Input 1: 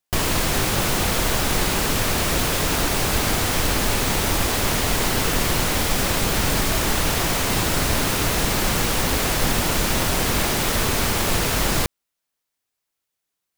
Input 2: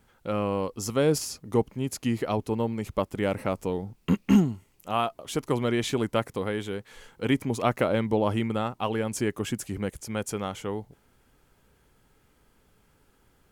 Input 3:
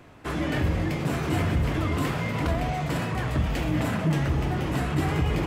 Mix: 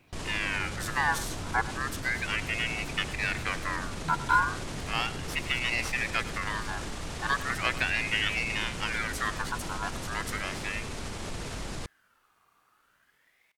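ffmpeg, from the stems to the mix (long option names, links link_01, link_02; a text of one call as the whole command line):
ffmpeg -i stem1.wav -i stem2.wav -i stem3.wav -filter_complex "[0:a]lowpass=frequency=9400:width=0.5412,lowpass=frequency=9400:width=1.3066,volume=-14.5dB[link_01];[1:a]aeval=exprs='val(0)*sin(2*PI*1800*n/s+1800*0.35/0.36*sin(2*PI*0.36*n/s))':channel_layout=same,volume=-2dB,asplit=2[link_02][link_03];[link_03]volume=-16dB[link_04];[2:a]volume=-16dB[link_05];[link_01][link_05]amix=inputs=2:normalize=0,lowshelf=frequency=370:gain=4.5,alimiter=level_in=3.5dB:limit=-24dB:level=0:latency=1:release=52,volume=-3.5dB,volume=0dB[link_06];[link_04]aecho=0:1:102:1[link_07];[link_02][link_06][link_07]amix=inputs=3:normalize=0" out.wav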